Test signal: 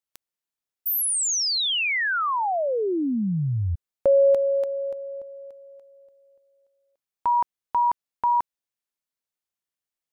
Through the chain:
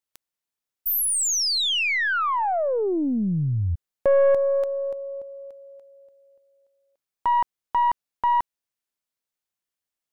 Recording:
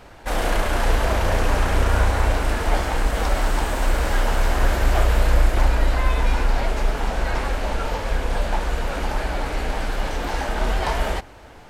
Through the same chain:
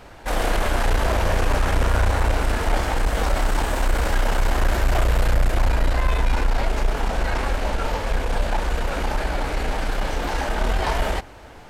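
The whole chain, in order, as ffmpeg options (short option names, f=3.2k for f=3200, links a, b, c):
-af "aeval=exprs='(tanh(5.01*val(0)+0.3)-tanh(0.3))/5.01':c=same,volume=2dB"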